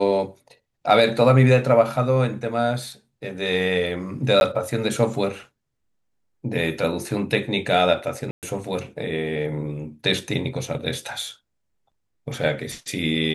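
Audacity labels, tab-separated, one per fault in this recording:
4.400000	4.410000	dropout 11 ms
8.310000	8.430000	dropout 118 ms

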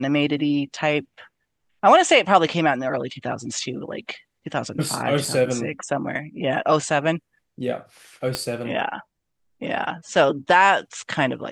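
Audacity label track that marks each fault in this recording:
5.250000	5.250000	dropout 3.8 ms
8.350000	8.350000	pop -8 dBFS

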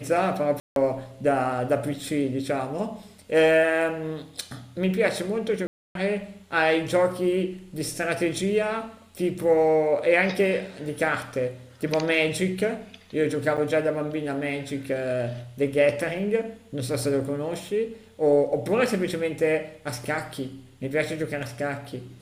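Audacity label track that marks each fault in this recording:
0.600000	0.760000	dropout 162 ms
5.670000	5.950000	dropout 282 ms
13.570000	13.580000	dropout 7.1 ms

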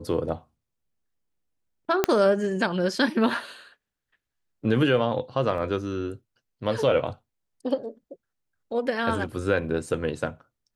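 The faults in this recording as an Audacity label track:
2.040000	2.040000	pop -5 dBFS
5.580000	5.580000	dropout 2 ms

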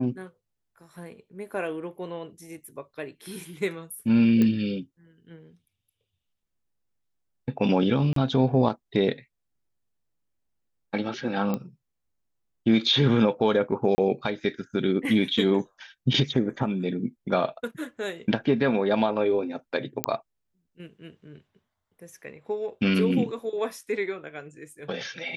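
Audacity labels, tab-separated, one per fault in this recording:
4.420000	4.420000	pop -13 dBFS
8.130000	8.160000	dropout 33 ms
11.540000	11.540000	pop -16 dBFS
13.950000	13.980000	dropout 30 ms
20.040000	20.040000	pop -5 dBFS

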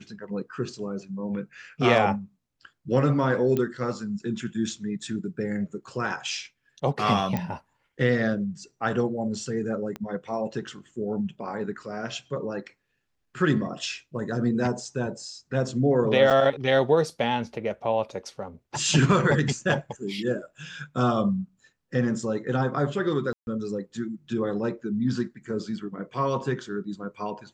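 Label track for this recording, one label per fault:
3.570000	3.570000	pop -15 dBFS
7.370000	7.370000	pop -15 dBFS
9.960000	9.960000	pop -20 dBFS
16.300000	16.310000	dropout 7.1 ms
23.330000	23.470000	dropout 141 ms

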